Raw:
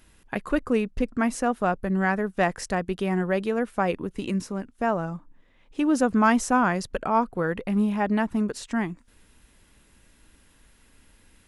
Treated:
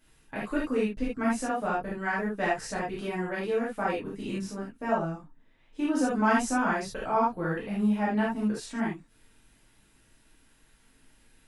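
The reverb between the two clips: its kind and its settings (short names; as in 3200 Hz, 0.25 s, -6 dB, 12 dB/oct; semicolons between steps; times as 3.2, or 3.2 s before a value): non-linear reverb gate 0.1 s flat, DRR -8 dB; gain -12 dB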